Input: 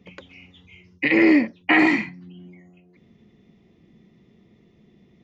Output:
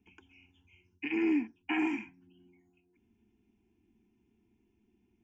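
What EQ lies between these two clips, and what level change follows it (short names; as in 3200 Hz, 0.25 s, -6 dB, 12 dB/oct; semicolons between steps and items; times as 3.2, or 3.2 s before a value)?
fixed phaser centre 800 Hz, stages 8; fixed phaser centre 2900 Hz, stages 8; -8.5 dB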